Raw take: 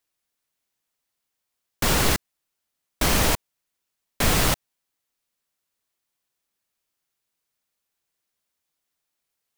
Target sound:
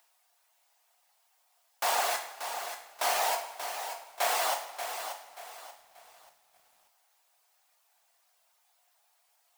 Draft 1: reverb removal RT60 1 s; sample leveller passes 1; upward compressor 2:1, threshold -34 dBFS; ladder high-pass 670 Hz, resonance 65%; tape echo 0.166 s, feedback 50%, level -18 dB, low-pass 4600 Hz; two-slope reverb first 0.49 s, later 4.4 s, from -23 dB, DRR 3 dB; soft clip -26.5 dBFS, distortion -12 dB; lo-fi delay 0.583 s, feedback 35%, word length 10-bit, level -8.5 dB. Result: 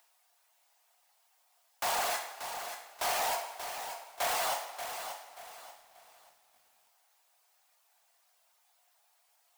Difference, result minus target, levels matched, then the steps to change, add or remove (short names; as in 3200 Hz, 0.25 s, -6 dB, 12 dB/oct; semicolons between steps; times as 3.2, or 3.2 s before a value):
soft clip: distortion +14 dB
change: soft clip -16 dBFS, distortion -26 dB